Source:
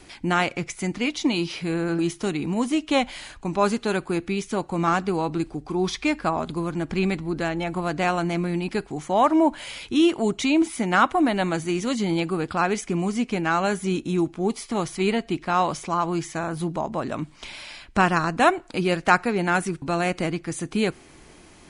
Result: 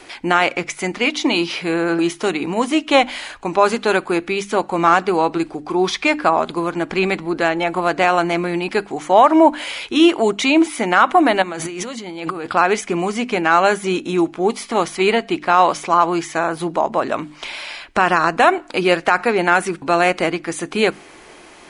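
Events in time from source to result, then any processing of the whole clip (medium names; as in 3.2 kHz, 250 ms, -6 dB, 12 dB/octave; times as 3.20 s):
11.42–12.47 s: compressor with a negative ratio -33 dBFS
whole clip: tone controls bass -15 dB, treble -6 dB; hum notches 50/100/150/200/250/300 Hz; loudness maximiser +11.5 dB; trim -1 dB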